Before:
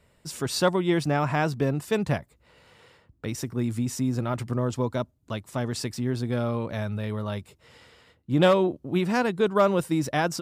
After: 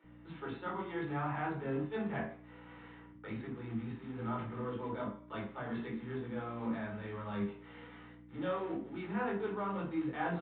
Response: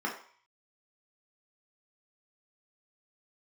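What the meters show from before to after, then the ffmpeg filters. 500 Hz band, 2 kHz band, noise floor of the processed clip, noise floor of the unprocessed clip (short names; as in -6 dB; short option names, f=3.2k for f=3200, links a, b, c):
-14.5 dB, -11.0 dB, -55 dBFS, -65 dBFS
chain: -filter_complex "[0:a]areverse,acompressor=threshold=-33dB:ratio=10,areverse,flanger=delay=18:depth=4.7:speed=0.24,acrusher=bits=4:mode=log:mix=0:aa=0.000001,aeval=exprs='val(0)+0.00251*(sin(2*PI*60*n/s)+sin(2*PI*2*60*n/s)/2+sin(2*PI*3*60*n/s)/3+sin(2*PI*4*60*n/s)/4+sin(2*PI*5*60*n/s)/5)':c=same,acrossover=split=360[a][b];[a]adelay=40[c];[c][b]amix=inputs=2:normalize=0[d];[1:a]atrim=start_sample=2205[e];[d][e]afir=irnorm=-1:irlink=0,aresample=8000,aresample=44100,volume=-3dB"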